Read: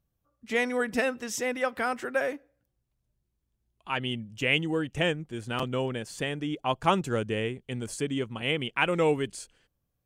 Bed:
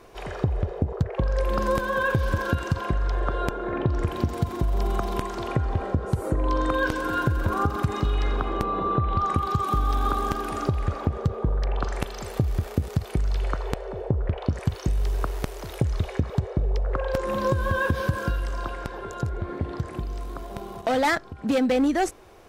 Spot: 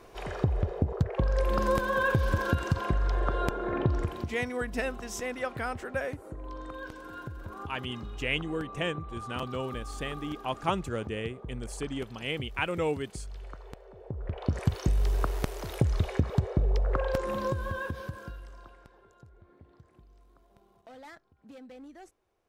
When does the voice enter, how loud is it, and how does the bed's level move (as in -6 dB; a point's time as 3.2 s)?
3.80 s, -5.0 dB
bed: 3.92 s -2.5 dB
4.52 s -17 dB
13.98 s -17 dB
14.57 s -1.5 dB
16.99 s -1.5 dB
19.25 s -26.5 dB